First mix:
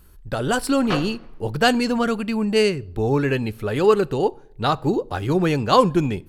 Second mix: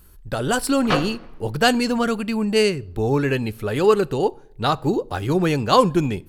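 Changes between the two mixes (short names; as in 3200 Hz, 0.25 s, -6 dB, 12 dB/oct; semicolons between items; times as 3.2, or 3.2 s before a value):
speech: add high shelf 6100 Hz +5 dB; background +4.5 dB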